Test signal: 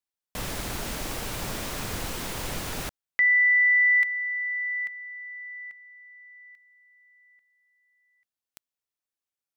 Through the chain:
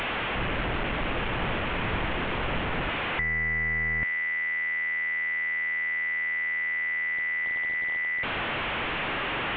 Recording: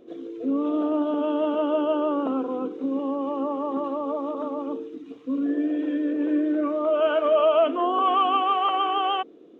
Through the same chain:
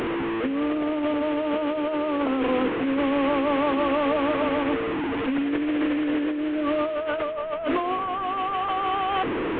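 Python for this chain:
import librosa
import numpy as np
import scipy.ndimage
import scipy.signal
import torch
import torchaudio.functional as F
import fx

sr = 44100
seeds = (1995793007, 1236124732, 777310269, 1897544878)

y = fx.delta_mod(x, sr, bps=16000, step_db=-26.0)
y = fx.over_compress(y, sr, threshold_db=-27.0, ratio=-1.0)
y = y * 10.0 ** (2.5 / 20.0)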